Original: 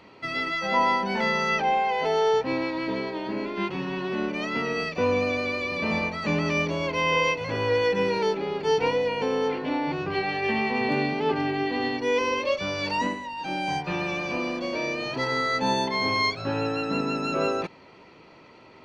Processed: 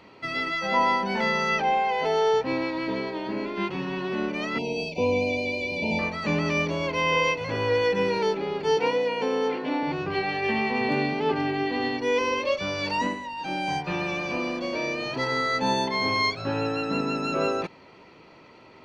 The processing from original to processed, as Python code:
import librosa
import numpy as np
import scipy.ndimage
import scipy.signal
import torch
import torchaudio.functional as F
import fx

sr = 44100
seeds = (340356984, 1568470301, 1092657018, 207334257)

y = fx.brickwall_bandstop(x, sr, low_hz=1000.0, high_hz=2100.0, at=(4.58, 5.99))
y = fx.highpass(y, sr, hz=170.0, slope=24, at=(8.77, 9.83))